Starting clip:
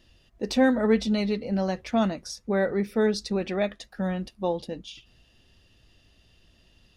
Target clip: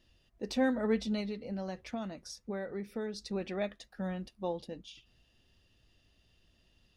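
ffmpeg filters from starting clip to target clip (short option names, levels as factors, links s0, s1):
-filter_complex "[0:a]asettb=1/sr,asplit=3[s0][s1][s2];[s0]atrim=end=1.204[s3];[s1]atrim=start=1.2:end=3.33,asetpts=PTS-STARTPTS,afade=t=in:d=0.004:c=qsin,afade=t=out:st=2.126:d=0.004:c=qsin,acompressor=threshold=0.0501:ratio=6[s4];[s2]atrim=start=3.326[s5];[s3][s4]acrossfade=d=0.004:c1=hsin:c2=qsin[s6];[s6][s5]acrossfade=d=0.004:c1=qsin:c2=hsin,volume=0.376"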